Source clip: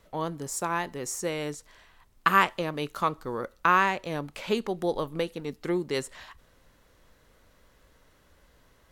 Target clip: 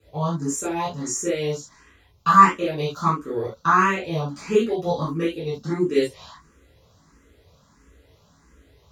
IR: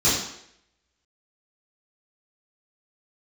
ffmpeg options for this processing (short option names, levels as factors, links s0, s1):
-filter_complex "[1:a]atrim=start_sample=2205,atrim=end_sample=3969[s0];[0:a][s0]afir=irnorm=-1:irlink=0,asplit=2[s1][s2];[s2]afreqshift=1.5[s3];[s1][s3]amix=inputs=2:normalize=1,volume=0.316"